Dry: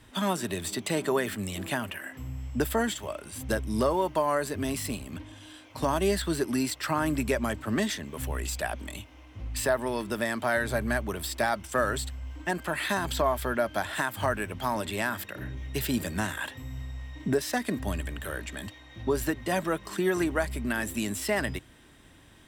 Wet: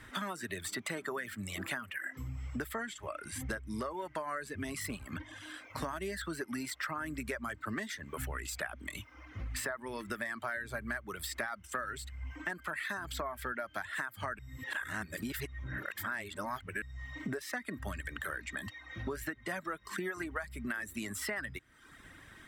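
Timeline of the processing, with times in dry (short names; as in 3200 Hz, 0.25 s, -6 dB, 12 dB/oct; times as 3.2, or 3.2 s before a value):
2.81–4.81 LPF 12000 Hz
14.39–16.82 reverse
whole clip: reverb removal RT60 0.72 s; band shelf 1600 Hz +9 dB 1.1 oct; compressor 6:1, threshold -36 dBFS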